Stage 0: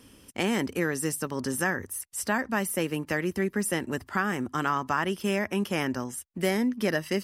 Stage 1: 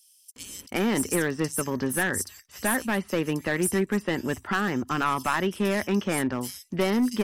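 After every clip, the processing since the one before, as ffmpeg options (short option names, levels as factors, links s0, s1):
-filter_complex "[0:a]acrossover=split=4300[s0][s1];[s0]adelay=360[s2];[s2][s1]amix=inputs=2:normalize=0,aeval=exprs='clip(val(0),-1,0.075)':c=same,volume=1.5"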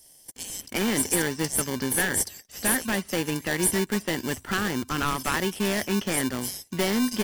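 -filter_complex "[0:a]asplit=2[s0][s1];[s1]acrusher=samples=34:mix=1:aa=0.000001,volume=0.631[s2];[s0][s2]amix=inputs=2:normalize=0,highshelf=f=2200:g=10.5,volume=0.562"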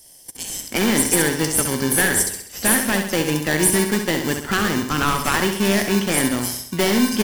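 -af "aecho=1:1:66|132|198|264|330|396:0.447|0.219|0.107|0.0526|0.0258|0.0126,volume=2"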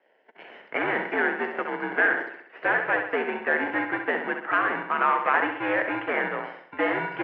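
-af "highpass=f=490:t=q:w=0.5412,highpass=f=490:t=q:w=1.307,lowpass=f=2300:t=q:w=0.5176,lowpass=f=2300:t=q:w=0.7071,lowpass=f=2300:t=q:w=1.932,afreqshift=-82"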